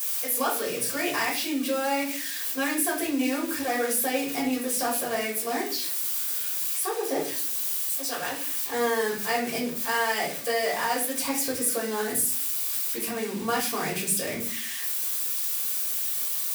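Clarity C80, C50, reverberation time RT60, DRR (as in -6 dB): 11.5 dB, 7.0 dB, not exponential, -5.0 dB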